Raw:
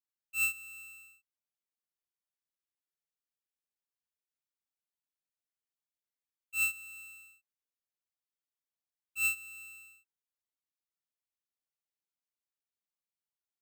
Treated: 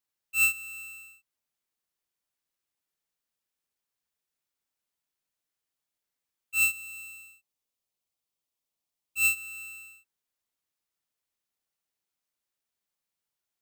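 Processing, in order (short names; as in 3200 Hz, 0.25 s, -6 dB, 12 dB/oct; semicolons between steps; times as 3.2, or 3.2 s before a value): 6.59–9.37 bell 1600 Hz -8 dB 0.62 oct; gain +7 dB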